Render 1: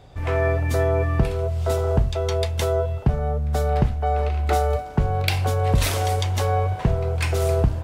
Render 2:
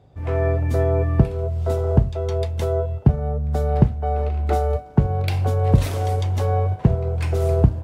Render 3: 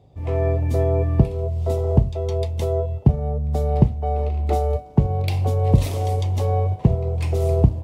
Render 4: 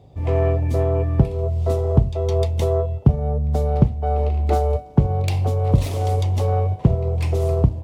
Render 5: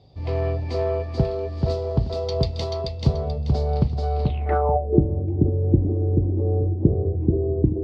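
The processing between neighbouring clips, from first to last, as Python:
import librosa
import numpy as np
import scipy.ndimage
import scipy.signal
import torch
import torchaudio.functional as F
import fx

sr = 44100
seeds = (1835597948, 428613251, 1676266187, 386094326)

y1 = scipy.signal.sosfilt(scipy.signal.butter(2, 67.0, 'highpass', fs=sr, output='sos'), x)
y1 = fx.tilt_shelf(y1, sr, db=6.0, hz=810.0)
y1 = fx.upward_expand(y1, sr, threshold_db=-28.0, expansion=1.5)
y1 = y1 * librosa.db_to_amplitude(1.0)
y2 = fx.peak_eq(y1, sr, hz=1500.0, db=-13.5, octaves=0.51)
y3 = fx.self_delay(y2, sr, depth_ms=0.26)
y3 = fx.rider(y3, sr, range_db=10, speed_s=0.5)
y3 = y3 * librosa.db_to_amplitude(1.0)
y4 = fx.echo_feedback(y3, sr, ms=434, feedback_pct=30, wet_db=-3.0)
y4 = fx.filter_sweep_lowpass(y4, sr, from_hz=4600.0, to_hz=330.0, start_s=4.23, end_s=4.99, q=7.3)
y4 = y4 * librosa.db_to_amplitude(-5.5)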